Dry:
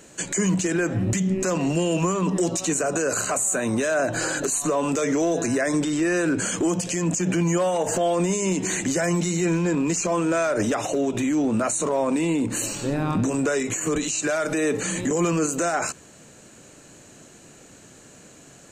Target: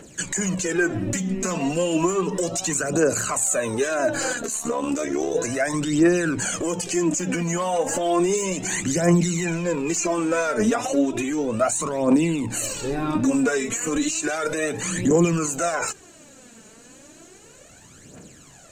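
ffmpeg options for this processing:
ffmpeg -i in.wav -filter_complex "[0:a]asettb=1/sr,asplit=3[link_01][link_02][link_03];[link_01]atrim=end=4.334[link_04];[link_02]atrim=start=4.33:end=5.35,asetpts=PTS-STARTPTS,afade=type=in:duration=0.004:curve=qsin,afade=type=out:start_time=1.016:duration=0.004:curve=qsin,tremolo=f=71:d=0.919[link_05];[link_03]atrim=start=5.346[link_06];[link_04][link_05]acrossfade=duration=0.004:curve1=hsin:curve2=qsin[link_07];[link_07][link_06]acrossfade=duration=0.004:curve1=qsin:curve2=hsin,aphaser=in_gain=1:out_gain=1:delay=4.7:decay=0.65:speed=0.33:type=triangular,volume=-1.5dB" out.wav

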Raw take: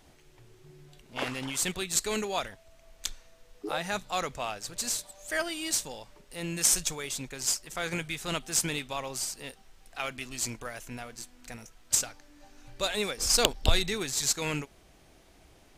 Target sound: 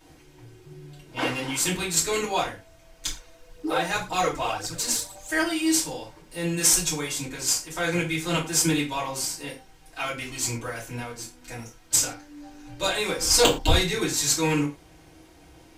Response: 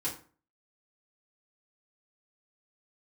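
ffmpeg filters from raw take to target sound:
-filter_complex "[1:a]atrim=start_sample=2205,afade=type=out:start_time=0.18:duration=0.01,atrim=end_sample=8379[link_01];[0:a][link_01]afir=irnorm=-1:irlink=0,asettb=1/sr,asplit=3[link_02][link_03][link_04];[link_02]atrim=end=3.074[link_05];[link_03]atrim=start=3.07:end=5.28,asetpts=PTS-STARTPTS,afade=type=in:duration=0.004:curve=qsin,afade=type=out:start_time=2.206:duration=0.004:curve=qsin,aphaser=in_gain=1:out_gain=1:delay=3.4:decay=0.45:speed=1.9:type=triangular[link_06];[link_04]atrim=start=5.276[link_07];[link_05][link_06]acrossfade=duration=0.004:curve1=hsin:curve2=qsin[link_08];[link_08][link_07]acrossfade=duration=0.004:curve1=qsin:curve2=hsin,volume=2.5dB"

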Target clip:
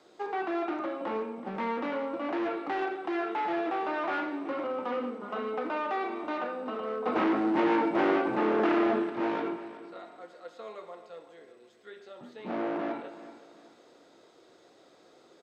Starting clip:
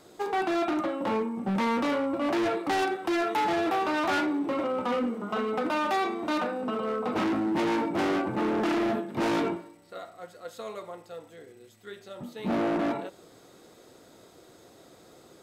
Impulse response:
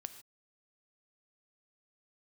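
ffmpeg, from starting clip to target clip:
-filter_complex "[0:a]acrossover=split=2800[link_01][link_02];[link_02]acompressor=threshold=-54dB:ratio=4:attack=1:release=60[link_03];[link_01][link_03]amix=inputs=2:normalize=0,acrossover=split=240 6600:gain=0.2 1 0.0891[link_04][link_05][link_06];[link_04][link_05][link_06]amix=inputs=3:normalize=0,asettb=1/sr,asplit=3[link_07][link_08][link_09];[link_07]atrim=end=7.064[link_10];[link_08]atrim=start=7.06:end=9.1,asetpts=PTS-STARTPTS,afade=type=in:duration=0.004:curve=qsin,afade=type=out:start_time=2.036:duration=0.004:curve=qsin,acontrast=52[link_11];[link_09]atrim=start=9.096[link_12];[link_10][link_11]acrossfade=duration=0.004:curve1=hsin:curve2=qsin[link_13];[link_13][link_12]acrossfade=duration=0.004:curve1=qsin:curve2=hsin,aecho=1:1:377|754|1131:0.188|0.064|0.0218[link_14];[1:a]atrim=start_sample=2205[link_15];[link_14][link_15]afir=irnorm=-1:irlink=0"

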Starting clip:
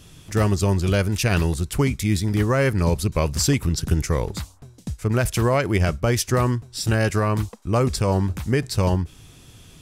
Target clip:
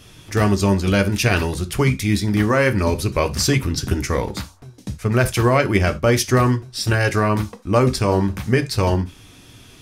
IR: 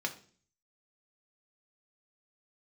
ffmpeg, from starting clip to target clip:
-filter_complex "[0:a]flanger=delay=1.5:depth=2.5:regen=-74:speed=0.59:shape=triangular,asplit=2[link_01][link_02];[1:a]atrim=start_sample=2205,atrim=end_sample=3969[link_03];[link_02][link_03]afir=irnorm=-1:irlink=0,volume=0.5dB[link_04];[link_01][link_04]amix=inputs=2:normalize=0,volume=1.5dB"

